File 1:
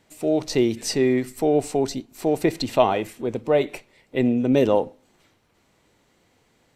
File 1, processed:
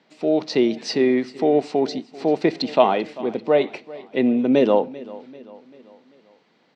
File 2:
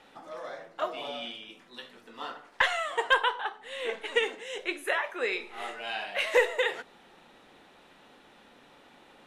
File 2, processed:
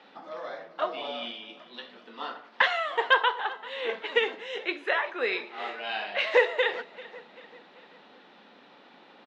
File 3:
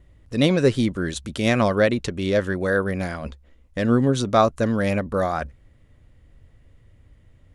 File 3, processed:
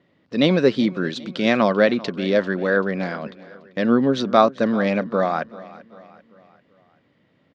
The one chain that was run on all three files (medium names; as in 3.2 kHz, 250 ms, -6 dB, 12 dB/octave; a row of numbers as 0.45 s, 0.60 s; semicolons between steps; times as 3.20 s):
Chebyshev band-pass 180–4700 Hz, order 3; feedback delay 391 ms, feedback 49%, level -19.5 dB; trim +2.5 dB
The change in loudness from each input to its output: +1.5 LU, +2.0 LU, +1.5 LU